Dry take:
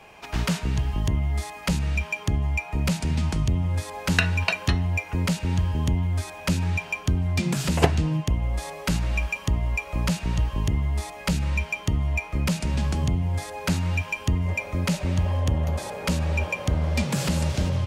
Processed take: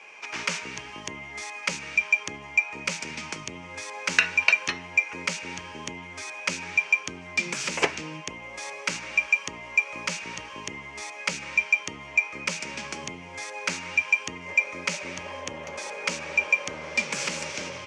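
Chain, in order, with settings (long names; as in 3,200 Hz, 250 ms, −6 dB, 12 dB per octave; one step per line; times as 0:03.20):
loudspeaker in its box 460–8,100 Hz, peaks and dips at 710 Hz −9 dB, 2,300 Hz +9 dB, 3,900 Hz −4 dB, 5,900 Hz +6 dB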